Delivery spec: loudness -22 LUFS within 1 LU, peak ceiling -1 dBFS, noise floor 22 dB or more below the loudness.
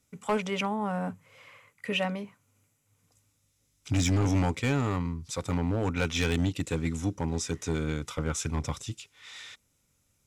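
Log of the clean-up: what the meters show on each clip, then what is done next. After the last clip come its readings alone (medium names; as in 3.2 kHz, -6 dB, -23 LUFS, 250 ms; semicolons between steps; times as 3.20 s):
clipped samples 1.1%; clipping level -20.0 dBFS; loudness -30.0 LUFS; peak level -20.0 dBFS; loudness target -22.0 LUFS
-> clip repair -20 dBFS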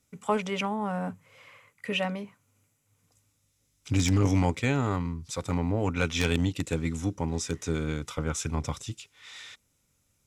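clipped samples 0.0%; loudness -29.5 LUFS; peak level -11.0 dBFS; loudness target -22.0 LUFS
-> trim +7.5 dB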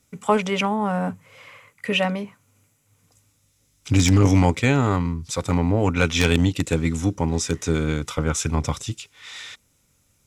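loudness -22.0 LUFS; peak level -3.5 dBFS; noise floor -65 dBFS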